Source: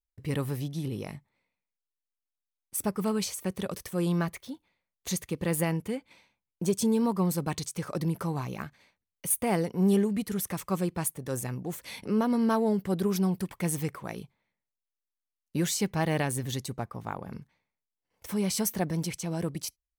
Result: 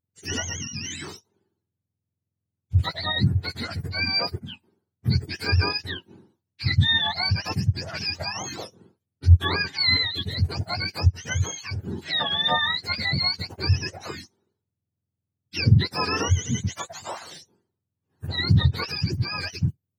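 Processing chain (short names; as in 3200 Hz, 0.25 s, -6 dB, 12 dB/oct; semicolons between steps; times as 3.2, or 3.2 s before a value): spectrum mirrored in octaves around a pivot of 900 Hz; gain +5.5 dB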